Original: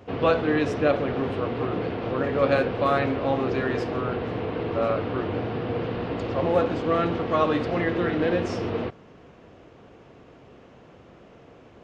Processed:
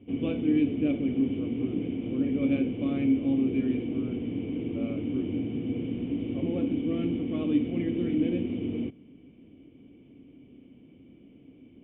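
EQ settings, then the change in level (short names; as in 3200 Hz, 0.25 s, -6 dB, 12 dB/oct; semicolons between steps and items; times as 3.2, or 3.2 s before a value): vocal tract filter i; +6.0 dB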